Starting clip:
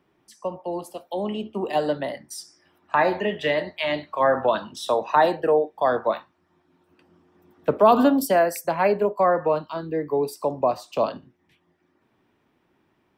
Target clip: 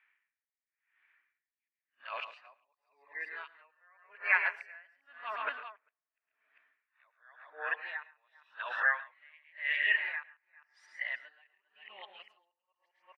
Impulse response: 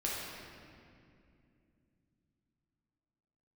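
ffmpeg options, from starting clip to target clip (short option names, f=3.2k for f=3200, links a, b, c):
-filter_complex "[0:a]areverse,asuperpass=centerf=2000:order=4:qfactor=2.2,aecho=1:1:110|137|398:0.282|0.282|0.335,asplit=2[a][b];[1:a]atrim=start_sample=2205,asetrate=52920,aresample=44100,lowpass=2k[c];[b][c]afir=irnorm=-1:irlink=0,volume=-23dB[d];[a][d]amix=inputs=2:normalize=0,aeval=exprs='val(0)*pow(10,-36*(0.5-0.5*cos(2*PI*0.91*n/s))/20)':c=same,volume=8dB"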